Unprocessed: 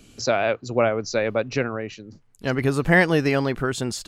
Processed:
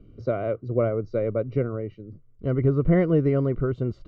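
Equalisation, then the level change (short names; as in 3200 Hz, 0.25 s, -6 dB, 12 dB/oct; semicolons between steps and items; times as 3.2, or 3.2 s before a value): running mean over 52 samples; air absorption 210 m; bell 230 Hz -7.5 dB 0.94 oct; +6.0 dB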